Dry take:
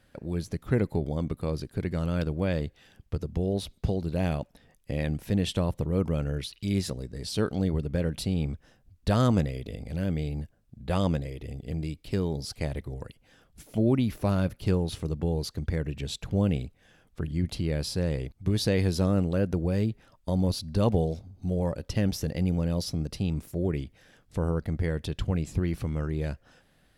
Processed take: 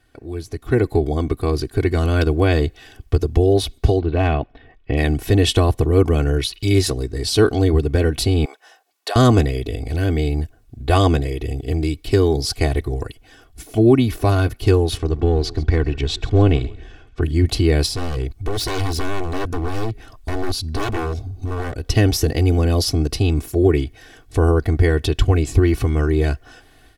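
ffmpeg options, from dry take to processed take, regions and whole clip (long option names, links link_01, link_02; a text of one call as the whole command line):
ffmpeg -i in.wav -filter_complex "[0:a]asettb=1/sr,asplit=3[link_01][link_02][link_03];[link_01]atrim=end=3.994[link_04];[link_02]atrim=start=3.99:end=4.97,asetpts=PTS-STARTPTS,afade=type=in:duration=0.004:curve=qsin,afade=type=out:start_time=0.976:duration=0.004:curve=qsin,lowpass=frequency=3200:width=0.5412,lowpass=frequency=3200:width=1.3066,asoftclip=type=hard:threshold=-19.5dB[link_05];[link_03]atrim=start=4.966[link_06];[link_04][link_05]acrossfade=duration=0.004:curve1=hsin:curve2=qsin[link_07];[link_07][link_06]acrossfade=duration=0.004:curve1=qsin:curve2=hsin,asettb=1/sr,asplit=3[link_08][link_09][link_10];[link_08]atrim=end=8.454[link_11];[link_09]atrim=start=8.45:end=9.16,asetpts=PTS-STARTPTS,afade=type=in:duration=0.004:curve=qsin,afade=type=out:start_time=0.706:duration=0.004:curve=qsin,highpass=frequency=540:width=0.5412,highpass=frequency=540:width=1.3066,equalizer=frequency=840:width=7.8:gain=5.5,acompressor=threshold=-33dB:ratio=5:attack=3.2:release=140:knee=1:detection=peak[link_12];[link_10]atrim=start=9.156[link_13];[link_11][link_12]acrossfade=duration=0.004:curve1=hsin:curve2=qsin[link_14];[link_14][link_13]acrossfade=duration=0.004:curve1=qsin:curve2=hsin,asettb=1/sr,asplit=3[link_15][link_16][link_17];[link_15]atrim=end=14.974[link_18];[link_16]atrim=start=14.97:end=17.22,asetpts=PTS-STARTPTS,afade=type=in:duration=0.004:curve=qsin,afade=type=out:start_time=2.246:duration=0.004:curve=qsin,aeval=exprs='if(lt(val(0),0),0.708*val(0),val(0))':channel_layout=same,lowpass=5200,asplit=5[link_19][link_20][link_21][link_22][link_23];[link_20]adelay=135,afreqshift=-45,volume=-19.5dB[link_24];[link_21]adelay=270,afreqshift=-90,volume=-26.1dB[link_25];[link_22]adelay=405,afreqshift=-135,volume=-32.6dB[link_26];[link_23]adelay=540,afreqshift=-180,volume=-39.2dB[link_27];[link_19][link_24][link_25][link_26][link_27]amix=inputs=5:normalize=0,atrim=end_sample=99225[link_28];[link_17]atrim=start=17.216[link_29];[link_18][link_28]acrossfade=duration=0.004:curve1=hsin:curve2=qsin[link_30];[link_30][link_29]acrossfade=duration=0.004:curve1=qsin:curve2=hsin,asettb=1/sr,asplit=3[link_31][link_32][link_33];[link_31]atrim=end=17.864[link_34];[link_32]atrim=start=17.86:end=21.9,asetpts=PTS-STARTPTS,afade=type=in:duration=0.004:curve=qsin,afade=type=out:start_time=4.036:duration=0.004:curve=qsin,aeval=exprs='0.0501*(abs(mod(val(0)/0.0501+3,4)-2)-1)':channel_layout=same,acompressor=threshold=-41dB:ratio=2:attack=3.2:release=140:knee=1:detection=peak,lowshelf=frequency=130:gain=5[link_35];[link_33]atrim=start=21.896[link_36];[link_34][link_35]acrossfade=duration=0.004:curve1=hsin:curve2=qsin[link_37];[link_37][link_36]acrossfade=duration=0.004:curve1=qsin:curve2=hsin,aecho=1:1:2.7:0.96,dynaudnorm=framelen=480:gausssize=3:maxgain=12dB" out.wav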